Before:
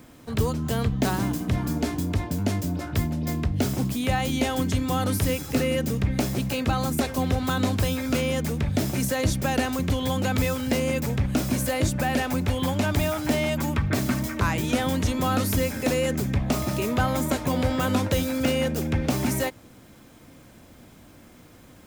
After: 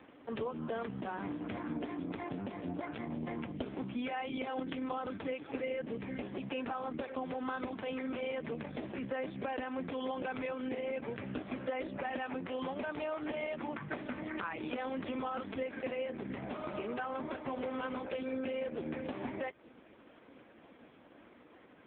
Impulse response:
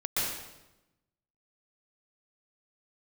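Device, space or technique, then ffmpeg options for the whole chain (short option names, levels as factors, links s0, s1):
voicemail: -filter_complex "[0:a]asettb=1/sr,asplit=3[s0][s1][s2];[s0]atrim=end=15.834[s3];[s1]atrim=start=15.83:end=17.46,asetpts=PTS-STARTPTS,afade=t=in:d=0.004:c=qsin,afade=t=out:st=1.626:d=0.004:c=qsin,bandreject=f=63:t=h:w=4,bandreject=f=126:t=h:w=4,bandreject=f=189:t=h:w=4,bandreject=f=252:t=h:w=4,bandreject=f=315:t=h:w=4,bandreject=f=378:t=h:w=4,bandreject=f=441:t=h:w=4,bandreject=f=504:t=h:w=4,bandreject=f=567:t=h:w=4,bandreject=f=630:t=h:w=4[s4];[s2]atrim=start=17.456[s5];[s3][s4]acrossfade=d=0.004:c1=hsin:c2=qsin[s6];[s6][s5]acrossfade=d=0.004:c1=qsin:c2=hsin,highpass=310,lowpass=3100,acompressor=threshold=0.0224:ratio=8" -ar 8000 -c:a libopencore_amrnb -b:a 4750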